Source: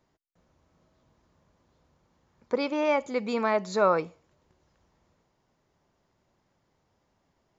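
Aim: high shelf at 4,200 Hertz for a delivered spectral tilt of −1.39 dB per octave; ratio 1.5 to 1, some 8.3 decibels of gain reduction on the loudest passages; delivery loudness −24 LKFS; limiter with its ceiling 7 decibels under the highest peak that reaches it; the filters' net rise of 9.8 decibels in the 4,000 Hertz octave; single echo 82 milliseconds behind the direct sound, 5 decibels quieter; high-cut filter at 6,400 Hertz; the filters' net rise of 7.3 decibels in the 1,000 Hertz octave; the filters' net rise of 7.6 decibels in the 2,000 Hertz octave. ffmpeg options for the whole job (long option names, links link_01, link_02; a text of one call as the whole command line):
ffmpeg -i in.wav -af "lowpass=6400,equalizer=frequency=1000:width_type=o:gain=7,equalizer=frequency=2000:width_type=o:gain=4,equalizer=frequency=4000:width_type=o:gain=7.5,highshelf=frequency=4200:gain=6.5,acompressor=threshold=-36dB:ratio=1.5,alimiter=limit=-20dB:level=0:latency=1,aecho=1:1:82:0.562,volume=6.5dB" out.wav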